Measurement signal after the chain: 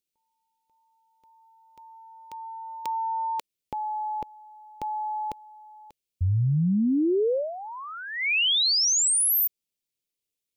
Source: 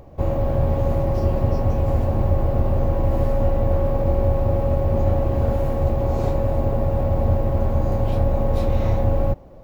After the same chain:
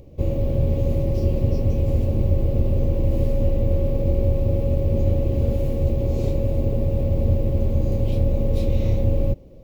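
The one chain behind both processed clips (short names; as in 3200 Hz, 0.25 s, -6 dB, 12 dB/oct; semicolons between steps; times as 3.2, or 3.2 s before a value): band shelf 1100 Hz -15 dB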